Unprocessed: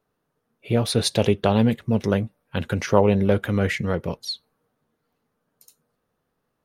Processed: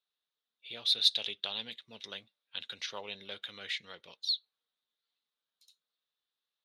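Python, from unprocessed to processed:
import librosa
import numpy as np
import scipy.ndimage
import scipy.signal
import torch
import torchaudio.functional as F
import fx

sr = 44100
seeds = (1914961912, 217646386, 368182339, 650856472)

p1 = fx.bandpass_q(x, sr, hz=3700.0, q=6.0)
p2 = 10.0 ** (-26.5 / 20.0) * np.tanh(p1 / 10.0 ** (-26.5 / 20.0))
p3 = p1 + (p2 * 10.0 ** (-11.0 / 20.0))
y = p3 * 10.0 ** (3.0 / 20.0)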